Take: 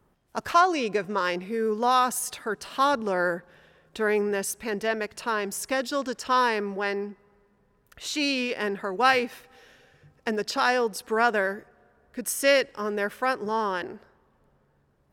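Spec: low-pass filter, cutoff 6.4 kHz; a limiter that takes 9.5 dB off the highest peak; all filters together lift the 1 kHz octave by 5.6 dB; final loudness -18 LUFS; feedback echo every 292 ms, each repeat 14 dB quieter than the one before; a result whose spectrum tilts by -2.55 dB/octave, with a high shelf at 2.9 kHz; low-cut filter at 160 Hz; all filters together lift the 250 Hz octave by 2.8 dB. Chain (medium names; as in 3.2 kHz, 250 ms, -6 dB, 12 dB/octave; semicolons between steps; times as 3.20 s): high-pass 160 Hz; low-pass 6.4 kHz; peaking EQ 250 Hz +4 dB; peaking EQ 1 kHz +5.5 dB; treble shelf 2.9 kHz +9 dB; peak limiter -12.5 dBFS; feedback delay 292 ms, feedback 20%, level -14 dB; trim +7 dB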